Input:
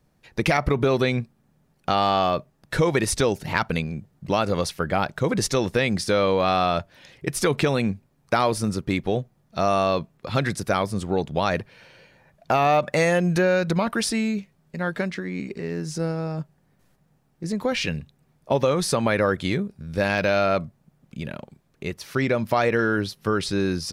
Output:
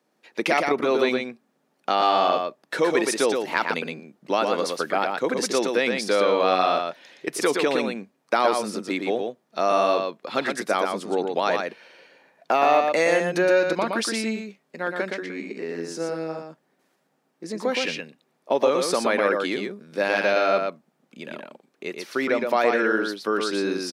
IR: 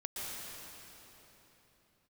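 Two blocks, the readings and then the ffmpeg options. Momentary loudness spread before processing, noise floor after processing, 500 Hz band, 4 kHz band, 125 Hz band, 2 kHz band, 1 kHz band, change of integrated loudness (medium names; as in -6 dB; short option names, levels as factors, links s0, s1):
12 LU, -70 dBFS, +1.0 dB, +0.5 dB, -15.5 dB, +1.0 dB, +1.5 dB, 0.0 dB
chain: -af "highpass=f=260:w=0.5412,highpass=f=260:w=1.3066,highshelf=f=8600:g=-6.5,aecho=1:1:118:0.596"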